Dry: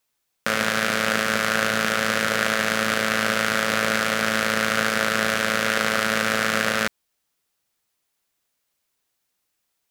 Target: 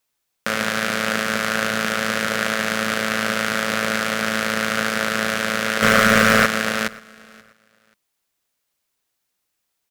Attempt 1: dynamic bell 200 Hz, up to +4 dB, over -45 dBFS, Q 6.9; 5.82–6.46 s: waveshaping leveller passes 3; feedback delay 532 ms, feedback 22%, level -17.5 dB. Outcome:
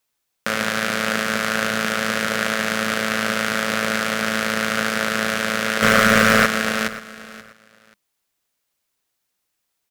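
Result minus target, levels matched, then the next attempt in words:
echo-to-direct +7 dB
dynamic bell 200 Hz, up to +4 dB, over -45 dBFS, Q 6.9; 5.82–6.46 s: waveshaping leveller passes 3; feedback delay 532 ms, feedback 22%, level -24.5 dB

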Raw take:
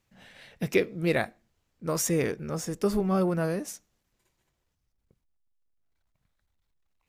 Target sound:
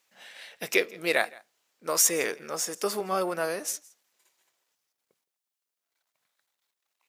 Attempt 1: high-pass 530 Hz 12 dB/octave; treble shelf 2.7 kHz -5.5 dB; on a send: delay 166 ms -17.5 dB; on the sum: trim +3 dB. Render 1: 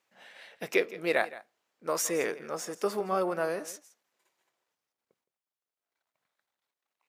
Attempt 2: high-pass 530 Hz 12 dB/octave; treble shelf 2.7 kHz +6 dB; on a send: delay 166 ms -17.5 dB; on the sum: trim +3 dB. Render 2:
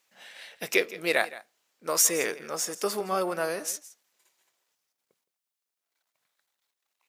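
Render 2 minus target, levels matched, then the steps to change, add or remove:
echo-to-direct +6 dB
change: delay 166 ms -23.5 dB

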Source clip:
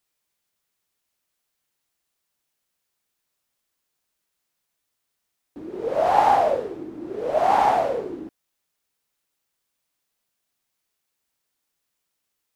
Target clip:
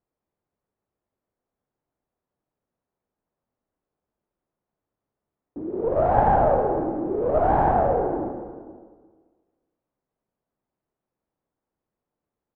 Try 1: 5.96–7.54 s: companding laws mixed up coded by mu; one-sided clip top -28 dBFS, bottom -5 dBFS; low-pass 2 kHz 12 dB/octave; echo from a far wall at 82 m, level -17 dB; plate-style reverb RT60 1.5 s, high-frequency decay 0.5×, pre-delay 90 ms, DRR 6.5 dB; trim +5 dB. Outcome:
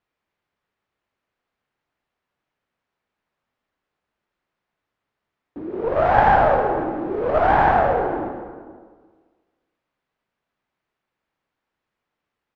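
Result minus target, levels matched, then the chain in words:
2 kHz band +9.5 dB
5.96–7.54 s: companding laws mixed up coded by mu; one-sided clip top -28 dBFS, bottom -5 dBFS; low-pass 710 Hz 12 dB/octave; echo from a far wall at 82 m, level -17 dB; plate-style reverb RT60 1.5 s, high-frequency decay 0.5×, pre-delay 90 ms, DRR 6.5 dB; trim +5 dB

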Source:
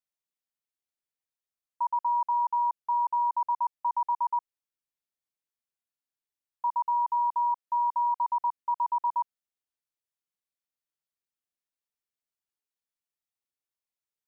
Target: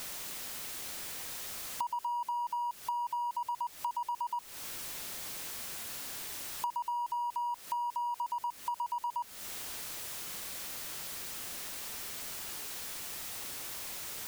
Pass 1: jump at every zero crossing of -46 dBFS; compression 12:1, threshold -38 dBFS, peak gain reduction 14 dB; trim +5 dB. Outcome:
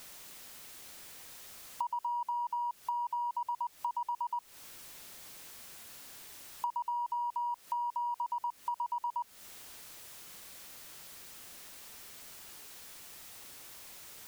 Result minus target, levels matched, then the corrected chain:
jump at every zero crossing: distortion -8 dB
jump at every zero crossing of -37 dBFS; compression 12:1, threshold -38 dBFS, peak gain reduction 14.5 dB; trim +5 dB

